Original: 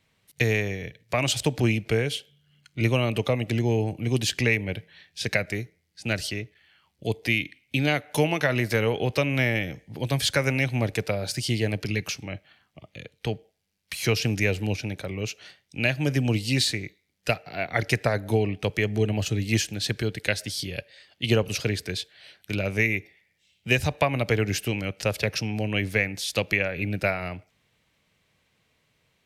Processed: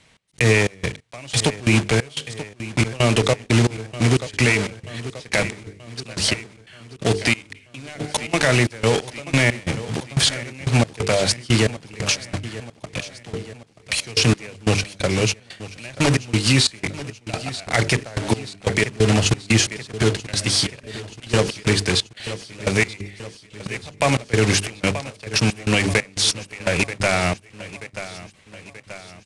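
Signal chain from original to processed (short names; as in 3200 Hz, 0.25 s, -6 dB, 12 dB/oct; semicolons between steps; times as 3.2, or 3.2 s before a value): block floating point 3-bit; steep low-pass 10000 Hz 48 dB/oct; notches 50/100/150/200/250/300/350/400/450 Hz; in parallel at -2.5 dB: compressor, threshold -31 dBFS, peak gain reduction 14 dB; on the sum: step gate "x.xx.x.." 90 bpm -24 dB; on a send: feedback echo 0.932 s, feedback 54%, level -18 dB; on the sum: maximiser +14.5 dB; gain -5.5 dB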